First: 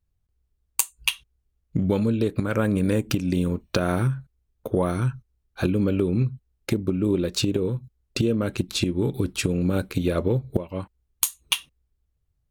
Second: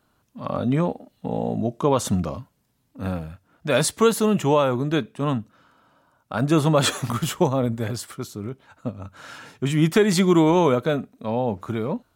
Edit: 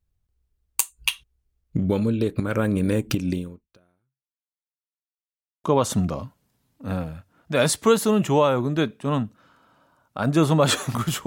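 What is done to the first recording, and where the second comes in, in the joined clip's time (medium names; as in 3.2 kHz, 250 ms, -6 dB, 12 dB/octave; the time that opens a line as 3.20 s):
first
3.31–4.67 s: fade out exponential
4.67–5.64 s: mute
5.64 s: go over to second from 1.79 s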